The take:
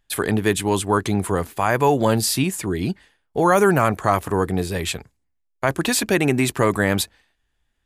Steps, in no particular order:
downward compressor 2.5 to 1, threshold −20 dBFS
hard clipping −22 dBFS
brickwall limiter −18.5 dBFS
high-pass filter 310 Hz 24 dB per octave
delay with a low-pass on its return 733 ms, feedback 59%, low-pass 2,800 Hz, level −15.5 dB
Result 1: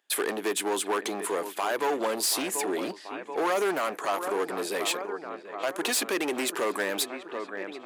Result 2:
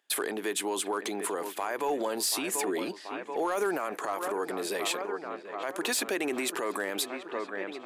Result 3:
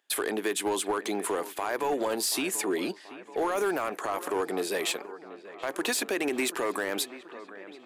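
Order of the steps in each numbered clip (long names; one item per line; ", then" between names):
delay with a low-pass on its return, then downward compressor, then hard clipping, then brickwall limiter, then high-pass filter
delay with a low-pass on its return, then downward compressor, then brickwall limiter, then high-pass filter, then hard clipping
downward compressor, then high-pass filter, then brickwall limiter, then delay with a low-pass on its return, then hard clipping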